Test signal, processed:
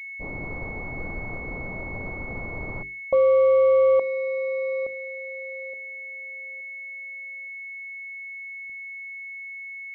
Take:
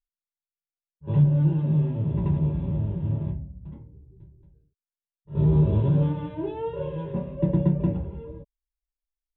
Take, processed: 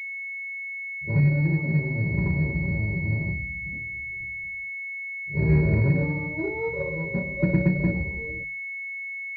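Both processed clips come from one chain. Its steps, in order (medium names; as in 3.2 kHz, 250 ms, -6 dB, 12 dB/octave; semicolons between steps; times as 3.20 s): hum notches 50/100/150/200/250/300/350/400 Hz; level-controlled noise filter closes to 300 Hz, open at -21 dBFS; class-D stage that switches slowly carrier 2.2 kHz; trim +1.5 dB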